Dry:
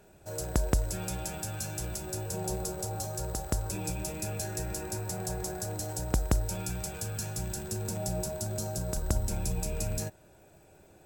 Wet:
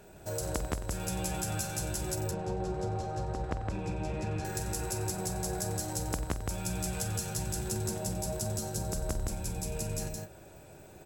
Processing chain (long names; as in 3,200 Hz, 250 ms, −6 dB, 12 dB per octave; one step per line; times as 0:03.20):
0:02.15–0:04.45: Bessel low-pass filter 2,200 Hz, order 2
downward compressor 6 to 1, threshold −36 dBFS, peak gain reduction 14.5 dB
multi-tap delay 47/91/162/194 ms −13/−14/−3.5/−17.5 dB
level +4 dB